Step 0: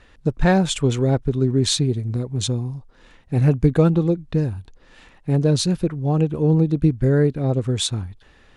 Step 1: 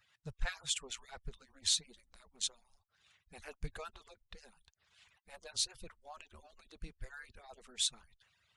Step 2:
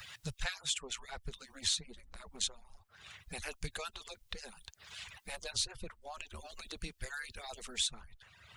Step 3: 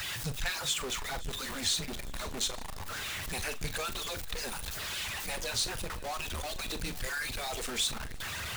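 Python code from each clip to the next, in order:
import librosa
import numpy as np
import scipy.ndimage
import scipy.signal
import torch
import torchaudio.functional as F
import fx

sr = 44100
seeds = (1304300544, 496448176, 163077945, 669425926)

y1 = fx.hpss_only(x, sr, part='percussive')
y1 = fx.tone_stack(y1, sr, knobs='10-0-10')
y1 = y1 * librosa.db_to_amplitude(-8.0)
y2 = fx.band_squash(y1, sr, depth_pct=70)
y2 = y2 * librosa.db_to_amplitude(4.5)
y3 = y2 + 0.5 * 10.0 ** (-33.0 / 20.0) * np.sign(y2)
y3 = fx.doubler(y3, sr, ms=42.0, db=-12)
y3 = fx.echo_swing(y3, sr, ms=864, ratio=1.5, feedback_pct=49, wet_db=-20.5)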